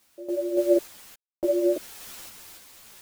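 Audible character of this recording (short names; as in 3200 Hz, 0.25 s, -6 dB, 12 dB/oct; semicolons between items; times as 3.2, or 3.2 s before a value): a quantiser's noise floor 8-bit, dither triangular; random-step tremolo 3.5 Hz, depth 100%; a shimmering, thickened sound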